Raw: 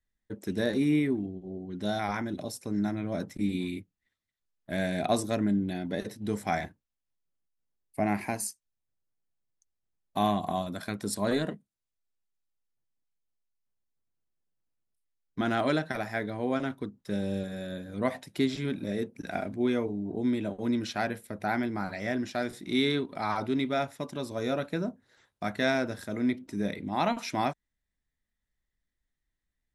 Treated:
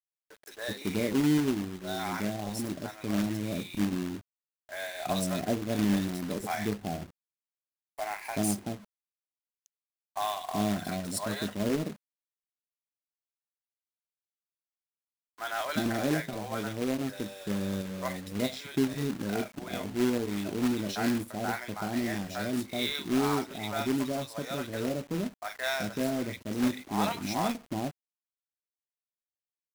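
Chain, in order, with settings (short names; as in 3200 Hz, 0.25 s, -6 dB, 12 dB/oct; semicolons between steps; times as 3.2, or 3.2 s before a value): three bands offset in time mids, highs, lows 40/380 ms, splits 640/2000 Hz; companded quantiser 4-bit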